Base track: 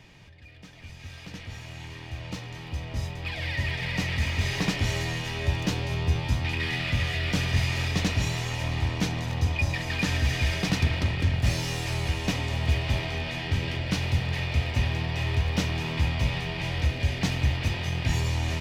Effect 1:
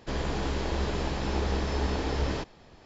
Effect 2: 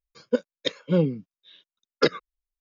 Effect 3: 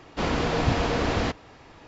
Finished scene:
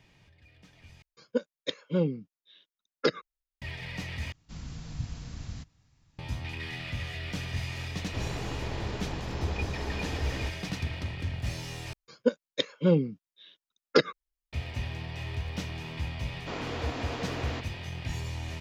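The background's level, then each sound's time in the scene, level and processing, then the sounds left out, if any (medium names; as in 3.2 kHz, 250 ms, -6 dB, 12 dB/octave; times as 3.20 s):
base track -9 dB
1.02 s: replace with 2 -5.5 dB
4.32 s: replace with 3 -9.5 dB + FFT filter 150 Hz 0 dB, 430 Hz -24 dB, 3.1 kHz -12 dB, 6.9 kHz 0 dB
8.06 s: add 1 -6.5 dB
11.93 s: replace with 2 -1.5 dB
16.29 s: add 3 -10.5 dB + steep high-pass 210 Hz 72 dB/octave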